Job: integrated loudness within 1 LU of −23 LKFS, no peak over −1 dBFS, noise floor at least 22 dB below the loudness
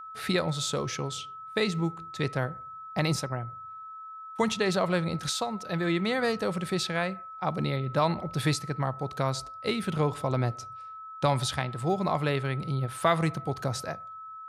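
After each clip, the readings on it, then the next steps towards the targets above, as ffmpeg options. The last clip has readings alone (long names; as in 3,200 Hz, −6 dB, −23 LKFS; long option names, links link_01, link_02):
interfering tone 1,300 Hz; level of the tone −40 dBFS; integrated loudness −29.5 LKFS; sample peak −10.5 dBFS; target loudness −23.0 LKFS
→ -af "bandreject=frequency=1300:width=30"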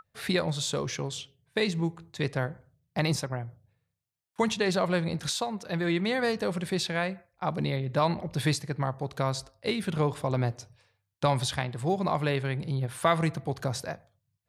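interfering tone none found; integrated loudness −30.0 LKFS; sample peak −10.5 dBFS; target loudness −23.0 LKFS
→ -af "volume=7dB"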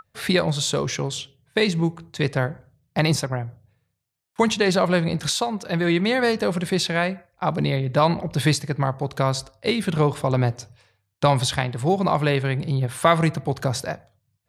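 integrated loudness −23.0 LKFS; sample peak −3.5 dBFS; background noise floor −74 dBFS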